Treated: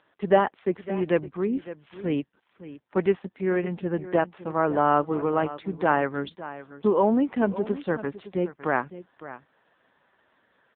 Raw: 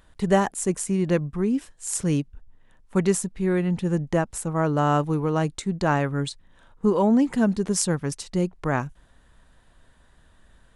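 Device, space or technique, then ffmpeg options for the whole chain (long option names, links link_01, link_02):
satellite phone: -af "highpass=310,lowpass=3400,aecho=1:1:559:0.178,volume=2.5dB" -ar 8000 -c:a libopencore_amrnb -b:a 5900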